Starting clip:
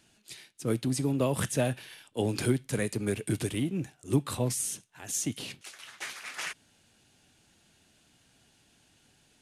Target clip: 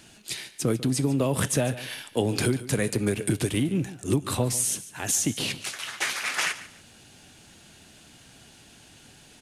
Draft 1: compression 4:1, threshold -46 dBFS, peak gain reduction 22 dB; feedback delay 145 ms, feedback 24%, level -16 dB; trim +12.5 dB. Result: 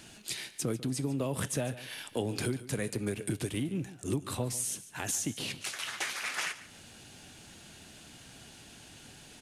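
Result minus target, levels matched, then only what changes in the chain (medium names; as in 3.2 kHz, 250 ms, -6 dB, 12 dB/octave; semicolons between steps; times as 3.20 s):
compression: peak gain reduction +8 dB
change: compression 4:1, threshold -35 dBFS, peak gain reduction 13.5 dB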